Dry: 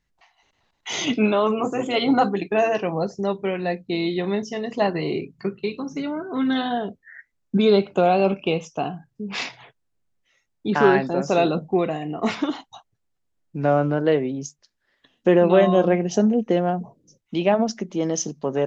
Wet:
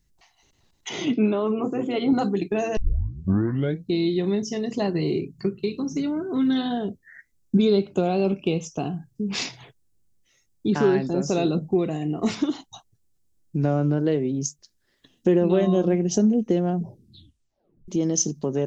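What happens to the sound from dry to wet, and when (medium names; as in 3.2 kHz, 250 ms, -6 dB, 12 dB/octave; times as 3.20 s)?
0.89–2.13 s: band-pass 150–2400 Hz
2.77 s: tape start 1.10 s
16.77 s: tape stop 1.11 s
whole clip: peaking EQ 360 Hz +7.5 dB 0.82 oct; compression 1.5:1, threshold -27 dBFS; tone controls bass +13 dB, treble +15 dB; trim -4.5 dB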